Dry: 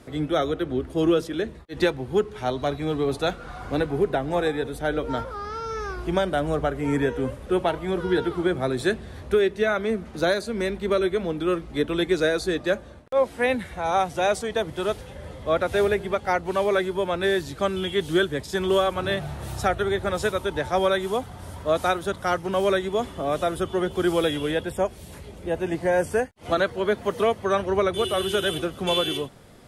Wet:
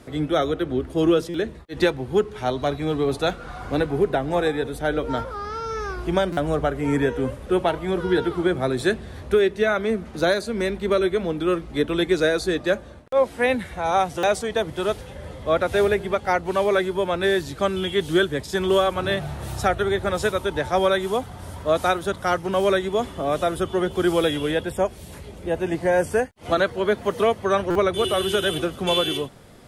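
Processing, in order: buffer glitch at 1.29/6.32/14.18/27.70 s, samples 256, times 8; 28.04–28.76 s: three bands compressed up and down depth 40%; trim +2 dB

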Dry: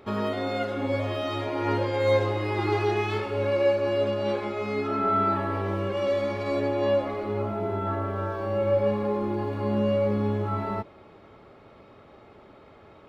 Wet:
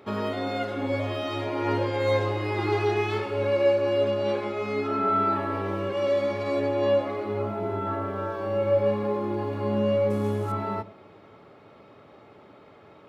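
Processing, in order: 10.10–10.52 s: CVSD coder 64 kbps; high-pass 97 Hz; simulated room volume 600 m³, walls furnished, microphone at 0.39 m

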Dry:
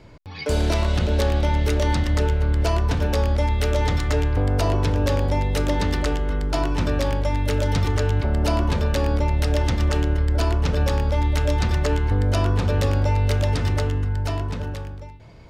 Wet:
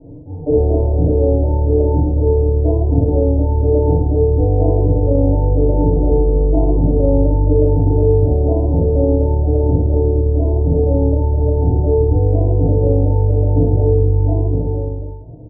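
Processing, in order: tracing distortion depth 0.26 ms; steep low-pass 700 Hz 48 dB/octave; in parallel at -1 dB: compressor with a negative ratio -22 dBFS, ratio -0.5; on the sum: doubling 43 ms -3 dB; FDN reverb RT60 0.34 s, low-frequency decay 1.1×, high-frequency decay 0.85×, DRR -8 dB; trim -7.5 dB

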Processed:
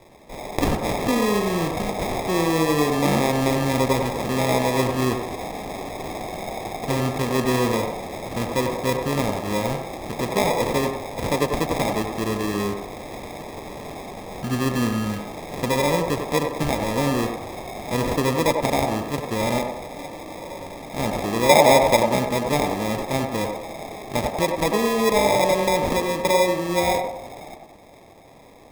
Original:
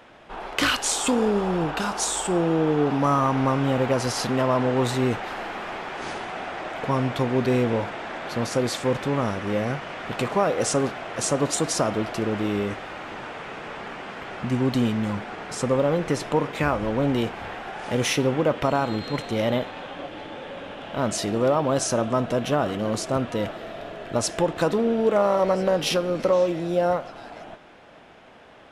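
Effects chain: 21.49–21.97 s: peaking EQ 620 Hz +9.5 dB 1.1 oct; sample-and-hold 30×; band-passed feedback delay 94 ms, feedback 47%, band-pass 670 Hz, level -3 dB

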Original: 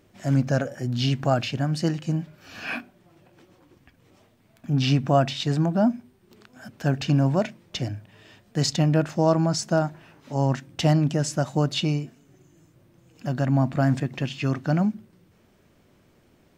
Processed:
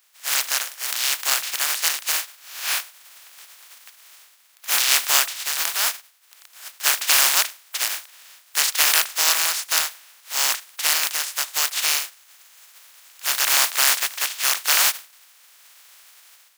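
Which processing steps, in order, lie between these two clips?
spectral contrast reduction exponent 0.18; high-pass 1.1 kHz 12 dB/octave; level rider; trim -1 dB

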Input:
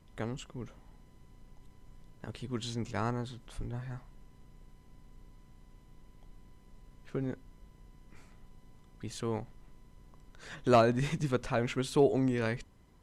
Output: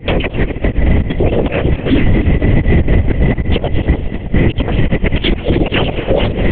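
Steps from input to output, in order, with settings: self-modulated delay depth 0.071 ms; recorder AGC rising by 78 dB/s; hum notches 60/120 Hz; sample-and-hold 3×; static phaser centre 2.9 kHz, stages 8; inverted gate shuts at -21 dBFS, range -29 dB; echo that smears into a reverb 502 ms, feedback 45%, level -12 dB; speed mistake 7.5 ips tape played at 15 ips; LPC vocoder at 8 kHz whisper; loudness maximiser +24.5 dB; endings held to a fixed fall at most 350 dB/s; trim -1 dB

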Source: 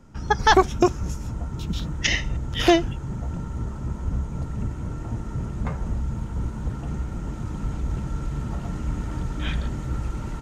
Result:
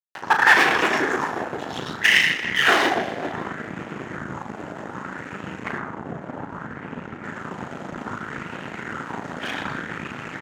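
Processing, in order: reverberation RT60 3.5 s, pre-delay 79 ms, DRR 3.5 dB; whisper effect; crossover distortion -28 dBFS; treble shelf 2.8 kHz +4.5 dB, from 5.78 s -8 dB, from 7.24 s +3 dB; valve stage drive 15 dB, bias 0.8; Bessel high-pass 270 Hz, order 2; upward compressor, threshold -29 dBFS; peaking EQ 1.7 kHz +10 dB 0.91 oct; doubling 37 ms -7.5 dB; sweeping bell 0.64 Hz 640–2700 Hz +8 dB; trim -3.5 dB

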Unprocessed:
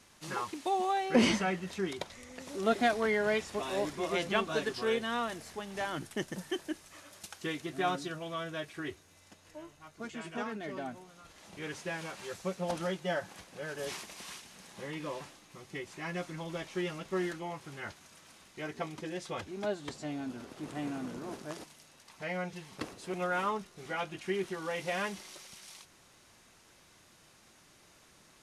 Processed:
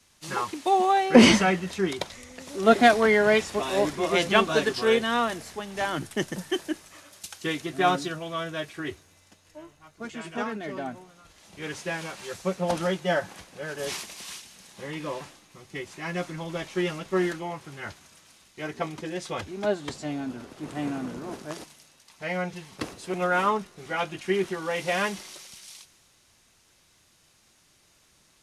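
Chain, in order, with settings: three bands expanded up and down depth 40%; trim +7.5 dB

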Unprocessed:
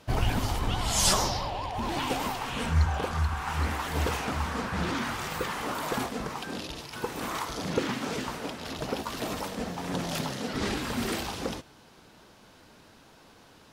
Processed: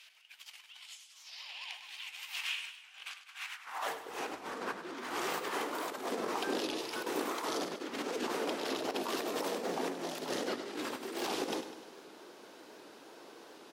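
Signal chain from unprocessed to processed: compressor with a negative ratio -35 dBFS, ratio -0.5; high-pass sweep 2.5 kHz -> 360 Hz, 3.47–4.00 s; feedback delay 100 ms, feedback 56%, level -11.5 dB; warped record 78 rpm, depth 100 cents; trim -5 dB

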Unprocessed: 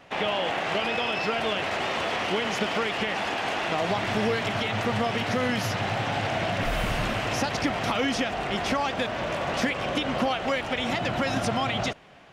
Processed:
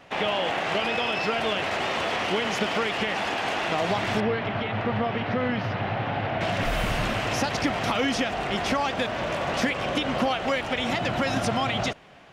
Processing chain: 4.20–6.41 s: distance through air 330 m; trim +1 dB

